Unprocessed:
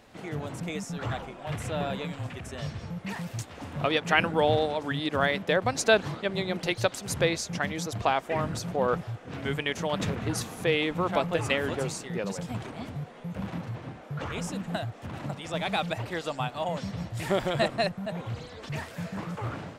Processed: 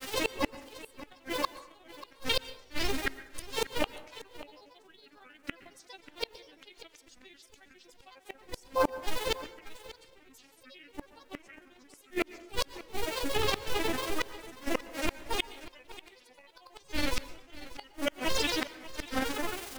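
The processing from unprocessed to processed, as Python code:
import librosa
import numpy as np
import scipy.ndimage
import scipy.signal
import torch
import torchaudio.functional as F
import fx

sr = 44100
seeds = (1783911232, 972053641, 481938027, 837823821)

p1 = fx.fade_out_tail(x, sr, length_s=1.05)
p2 = scipy.signal.sosfilt(scipy.signal.butter(2, 49.0, 'highpass', fs=sr, output='sos'), p1)
p3 = fx.high_shelf_res(p2, sr, hz=1900.0, db=6.5, q=1.5)
p4 = fx.over_compress(p3, sr, threshold_db=-35.0, ratio=-1.0)
p5 = p3 + (p4 * librosa.db_to_amplitude(1.0))
p6 = fx.robotise(p5, sr, hz=371.0)
p7 = fx.dmg_noise_colour(p6, sr, seeds[0], colour='white', level_db=-48.0)
p8 = fx.granulator(p7, sr, seeds[1], grain_ms=82.0, per_s=22.0, spray_ms=12.0, spread_st=7)
p9 = fx.gate_flip(p8, sr, shuts_db=-17.0, range_db=-34)
p10 = p9 + fx.echo_single(p9, sr, ms=588, db=-16.5, dry=0)
p11 = fx.rev_plate(p10, sr, seeds[2], rt60_s=0.69, hf_ratio=0.6, predelay_ms=105, drr_db=15.5)
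y = p11 * librosa.db_to_amplitude(6.0)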